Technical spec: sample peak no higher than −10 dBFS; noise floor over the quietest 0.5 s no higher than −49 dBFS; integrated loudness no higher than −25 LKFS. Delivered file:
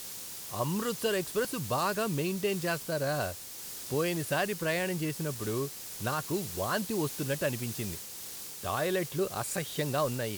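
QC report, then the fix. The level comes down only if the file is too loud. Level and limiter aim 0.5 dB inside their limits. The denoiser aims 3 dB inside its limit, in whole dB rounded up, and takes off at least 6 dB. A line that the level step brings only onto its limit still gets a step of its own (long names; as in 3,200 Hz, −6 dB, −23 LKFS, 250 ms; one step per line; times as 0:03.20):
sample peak −16.0 dBFS: in spec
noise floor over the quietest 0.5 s −43 dBFS: out of spec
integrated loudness −32.5 LKFS: in spec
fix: broadband denoise 9 dB, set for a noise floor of −43 dBFS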